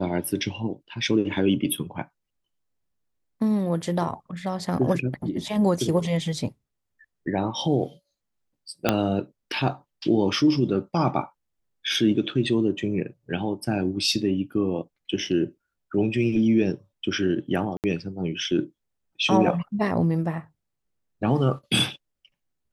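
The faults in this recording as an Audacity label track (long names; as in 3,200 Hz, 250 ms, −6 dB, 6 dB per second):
8.890000	8.890000	click −5 dBFS
17.770000	17.840000	drop-out 68 ms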